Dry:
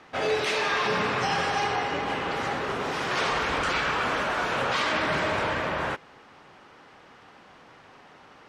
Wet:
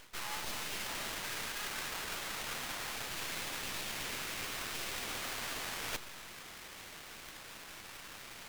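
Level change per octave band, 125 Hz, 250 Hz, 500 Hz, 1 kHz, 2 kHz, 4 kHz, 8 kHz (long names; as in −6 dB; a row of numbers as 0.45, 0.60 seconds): −15.5, −16.5, −20.0, −18.0, −13.0, −7.5, +1.5 decibels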